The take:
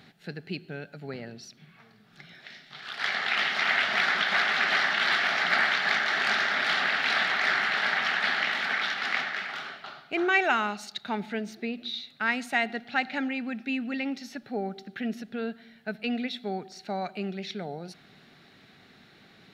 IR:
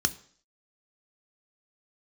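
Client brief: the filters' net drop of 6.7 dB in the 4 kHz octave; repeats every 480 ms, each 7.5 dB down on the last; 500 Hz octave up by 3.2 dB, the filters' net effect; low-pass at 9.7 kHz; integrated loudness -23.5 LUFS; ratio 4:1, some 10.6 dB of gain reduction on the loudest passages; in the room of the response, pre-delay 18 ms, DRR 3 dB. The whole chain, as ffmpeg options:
-filter_complex "[0:a]lowpass=9700,equalizer=f=500:t=o:g=4.5,equalizer=f=4000:t=o:g=-9,acompressor=threshold=0.02:ratio=4,aecho=1:1:480|960|1440|1920|2400:0.422|0.177|0.0744|0.0312|0.0131,asplit=2[s0][s1];[1:a]atrim=start_sample=2205,adelay=18[s2];[s1][s2]afir=irnorm=-1:irlink=0,volume=0.282[s3];[s0][s3]amix=inputs=2:normalize=0,volume=3.16"

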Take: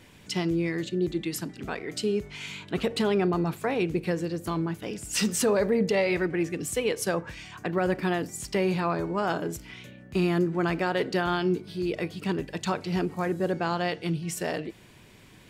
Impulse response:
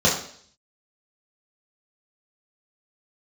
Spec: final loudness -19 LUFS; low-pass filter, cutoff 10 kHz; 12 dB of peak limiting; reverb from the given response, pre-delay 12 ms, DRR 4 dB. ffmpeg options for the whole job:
-filter_complex "[0:a]lowpass=10000,alimiter=level_in=1.33:limit=0.0631:level=0:latency=1,volume=0.75,asplit=2[s0][s1];[1:a]atrim=start_sample=2205,adelay=12[s2];[s1][s2]afir=irnorm=-1:irlink=0,volume=0.075[s3];[s0][s3]amix=inputs=2:normalize=0,volume=4.22"

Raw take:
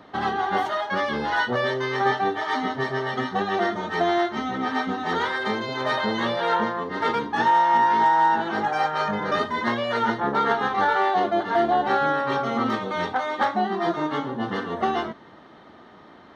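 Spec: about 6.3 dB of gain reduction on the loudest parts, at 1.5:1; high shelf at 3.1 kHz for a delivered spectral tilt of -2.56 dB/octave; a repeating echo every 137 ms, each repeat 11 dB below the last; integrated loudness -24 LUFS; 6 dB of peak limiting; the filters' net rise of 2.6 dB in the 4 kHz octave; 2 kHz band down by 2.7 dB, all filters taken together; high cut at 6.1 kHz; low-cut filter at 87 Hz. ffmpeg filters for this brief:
-af "highpass=87,lowpass=6100,equalizer=f=2000:t=o:g=-3.5,highshelf=f=3100:g=-5,equalizer=f=4000:t=o:g=8.5,acompressor=threshold=0.02:ratio=1.5,alimiter=limit=0.0794:level=0:latency=1,aecho=1:1:137|274|411:0.282|0.0789|0.0221,volume=2.11"

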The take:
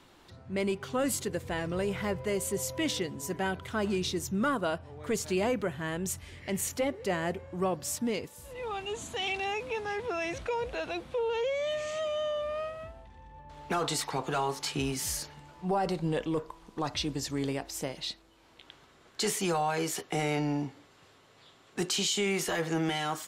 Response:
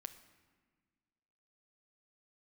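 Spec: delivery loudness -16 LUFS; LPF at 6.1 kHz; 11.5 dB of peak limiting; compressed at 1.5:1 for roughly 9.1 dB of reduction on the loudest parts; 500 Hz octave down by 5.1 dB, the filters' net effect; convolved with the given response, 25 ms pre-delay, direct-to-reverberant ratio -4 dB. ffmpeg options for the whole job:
-filter_complex "[0:a]lowpass=6100,equalizer=f=500:t=o:g=-6.5,acompressor=threshold=0.002:ratio=1.5,alimiter=level_in=5.01:limit=0.0631:level=0:latency=1,volume=0.2,asplit=2[s0][s1];[1:a]atrim=start_sample=2205,adelay=25[s2];[s1][s2]afir=irnorm=-1:irlink=0,volume=2.66[s3];[s0][s3]amix=inputs=2:normalize=0,volume=18.8"

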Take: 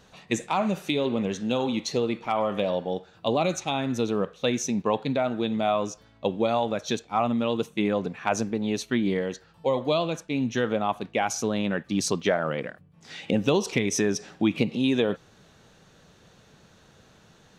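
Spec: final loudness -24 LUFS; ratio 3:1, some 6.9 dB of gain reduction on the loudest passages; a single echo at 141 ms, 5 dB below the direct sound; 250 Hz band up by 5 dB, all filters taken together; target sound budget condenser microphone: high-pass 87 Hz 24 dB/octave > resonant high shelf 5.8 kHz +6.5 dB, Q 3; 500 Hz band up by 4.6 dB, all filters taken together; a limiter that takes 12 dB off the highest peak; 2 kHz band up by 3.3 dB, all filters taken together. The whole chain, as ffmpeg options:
-af "equalizer=f=250:t=o:g=5,equalizer=f=500:t=o:g=4,equalizer=f=2000:t=o:g=5,acompressor=threshold=0.0708:ratio=3,alimiter=limit=0.0944:level=0:latency=1,highpass=f=87:w=0.5412,highpass=f=87:w=1.3066,highshelf=f=5800:t=q:w=3:g=6.5,aecho=1:1:141:0.562,volume=1.88"

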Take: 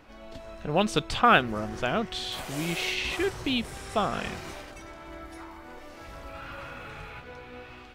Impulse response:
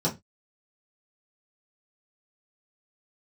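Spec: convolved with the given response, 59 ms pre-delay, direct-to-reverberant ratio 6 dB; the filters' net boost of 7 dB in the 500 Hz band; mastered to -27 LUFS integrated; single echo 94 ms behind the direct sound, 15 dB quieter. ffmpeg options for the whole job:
-filter_complex "[0:a]equalizer=f=500:t=o:g=9,aecho=1:1:94:0.178,asplit=2[s0][s1];[1:a]atrim=start_sample=2205,adelay=59[s2];[s1][s2]afir=irnorm=-1:irlink=0,volume=0.158[s3];[s0][s3]amix=inputs=2:normalize=0,volume=0.562"

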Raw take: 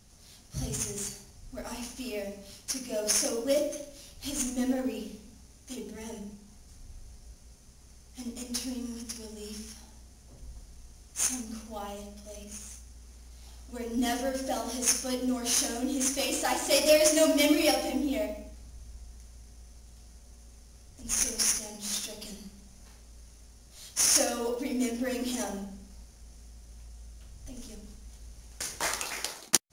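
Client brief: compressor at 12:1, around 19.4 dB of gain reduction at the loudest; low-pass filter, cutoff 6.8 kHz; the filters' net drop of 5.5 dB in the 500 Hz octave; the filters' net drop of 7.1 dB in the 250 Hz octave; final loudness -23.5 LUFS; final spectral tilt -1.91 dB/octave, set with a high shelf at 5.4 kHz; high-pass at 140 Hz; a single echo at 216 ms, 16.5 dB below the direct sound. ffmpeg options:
-af "highpass=140,lowpass=6800,equalizer=f=250:t=o:g=-6,equalizer=f=500:t=o:g=-6,highshelf=f=5400:g=4.5,acompressor=threshold=0.00794:ratio=12,aecho=1:1:216:0.15,volume=13.3"

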